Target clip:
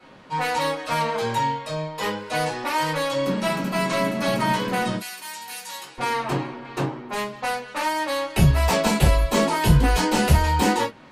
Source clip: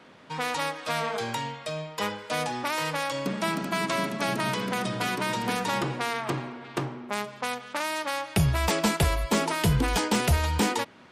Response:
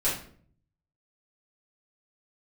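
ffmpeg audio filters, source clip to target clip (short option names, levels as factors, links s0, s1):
-filter_complex "[0:a]asettb=1/sr,asplit=3[s0][s1][s2];[s0]atrim=end=4.954[s3];[s1]atrim=start=4.95:end=5.98,asetpts=PTS-STARTPTS,afade=t=in:d=0.004:c=qsin,afade=t=out:st=1.026:d=0.004:c=qsin,aderivative[s4];[s2]atrim=start=5.976[s5];[s3][s4]acrossfade=d=0.004:c1=hsin:c2=qsin[s6];[s6][s5]acrossfade=d=0.004:c1=qsin:c2=hsin[s7];[1:a]atrim=start_sample=2205,afade=t=out:st=0.18:d=0.01,atrim=end_sample=8379,asetrate=74970,aresample=44100[s8];[s7][s8]afir=irnorm=-1:irlink=0,volume=0.841"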